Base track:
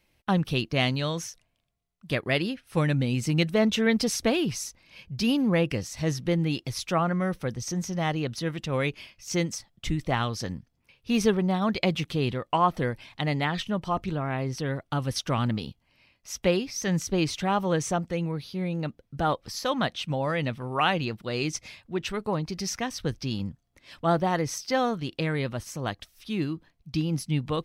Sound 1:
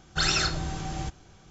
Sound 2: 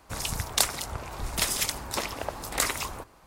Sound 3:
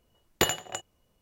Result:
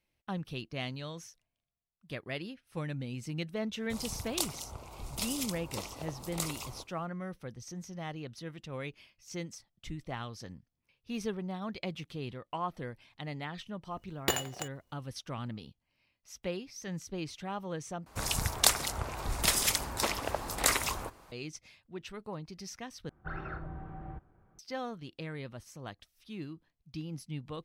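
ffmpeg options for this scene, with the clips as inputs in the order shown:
-filter_complex "[2:a]asplit=2[s0][s1];[0:a]volume=0.224[s2];[s0]equalizer=f=1700:w=3.1:g=-15[s3];[3:a]acrusher=bits=2:mode=log:mix=0:aa=0.000001[s4];[1:a]lowpass=f=1600:w=0.5412,lowpass=f=1600:w=1.3066[s5];[s2]asplit=3[s6][s7][s8];[s6]atrim=end=18.064[s9];[s1]atrim=end=3.26,asetpts=PTS-STARTPTS,volume=0.944[s10];[s7]atrim=start=21.316:end=23.094[s11];[s5]atrim=end=1.5,asetpts=PTS-STARTPTS,volume=0.299[s12];[s8]atrim=start=24.586[s13];[s3]atrim=end=3.26,asetpts=PTS-STARTPTS,volume=0.355,afade=t=in:d=0.004:c=hsin,afade=t=out:st=3.256:d=0.004:c=hsin,adelay=3800[s14];[s4]atrim=end=1.21,asetpts=PTS-STARTPTS,volume=0.531,afade=t=in:d=0.004:c=hsin,afade=t=out:st=1.206:d=0.004:c=hsin,adelay=13870[s15];[s9][s10]acrossfade=d=0.004:c1=hsin:c2=hsin[s16];[s16][s11]acrossfade=d=0.004:c1=hsin:c2=hsin[s17];[s17][s12]acrossfade=d=0.004:c1=hsin:c2=hsin[s18];[s18][s13]acrossfade=d=0.004:c1=hsin:c2=hsin[s19];[s19][s14][s15]amix=inputs=3:normalize=0"

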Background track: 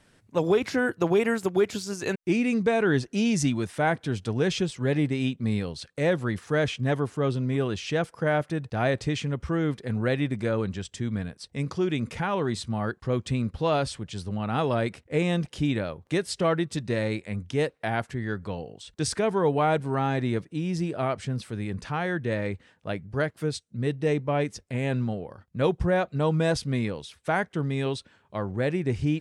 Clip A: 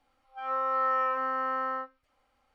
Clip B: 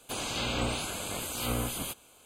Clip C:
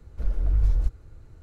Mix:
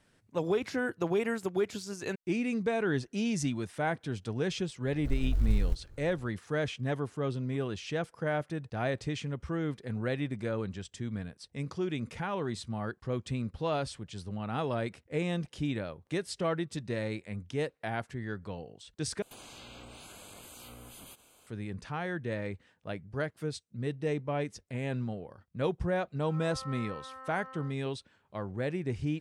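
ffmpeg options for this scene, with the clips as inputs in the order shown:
-filter_complex "[0:a]volume=0.447[s0];[3:a]acrusher=bits=9:mode=log:mix=0:aa=0.000001[s1];[2:a]acompressor=threshold=0.00708:ratio=6:attack=3.2:release=140:knee=1:detection=peak[s2];[s0]asplit=2[s3][s4];[s3]atrim=end=19.224[s5];[s2]atrim=end=2.25,asetpts=PTS-STARTPTS,volume=0.631[s6];[s4]atrim=start=21.466[s7];[s1]atrim=end=1.42,asetpts=PTS-STARTPTS,volume=0.531,afade=t=in:d=0.004:c=hsin,afade=t=out:st=1.416:d=0.004:c=hsin,adelay=4860[s8];[1:a]atrim=end=2.54,asetpts=PTS-STARTPTS,volume=0.15,afade=t=in:d=0.004:c=hsin,afade=t=out:st=2.536:d=0.004:c=hsin,adelay=25870[s9];[s5][s6]acrossfade=d=0.004:c1=hsin:c2=hsin[s10];[s10][s7]acrossfade=d=0.004:c1=hsin:c2=hsin[s11];[s11][s8][s9]amix=inputs=3:normalize=0"

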